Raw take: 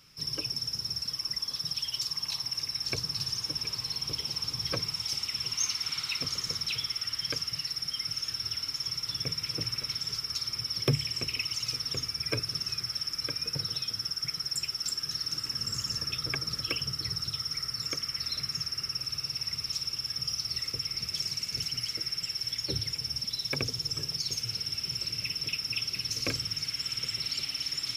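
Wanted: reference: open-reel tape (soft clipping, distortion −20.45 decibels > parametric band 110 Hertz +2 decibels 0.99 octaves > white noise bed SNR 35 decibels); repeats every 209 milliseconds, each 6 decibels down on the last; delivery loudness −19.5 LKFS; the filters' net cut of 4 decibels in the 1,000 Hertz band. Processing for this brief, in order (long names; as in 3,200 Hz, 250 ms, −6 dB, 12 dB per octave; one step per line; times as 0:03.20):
parametric band 1,000 Hz −5.5 dB
repeating echo 209 ms, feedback 50%, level −6 dB
soft clipping −22.5 dBFS
parametric band 110 Hz +2 dB 0.99 octaves
white noise bed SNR 35 dB
level +11 dB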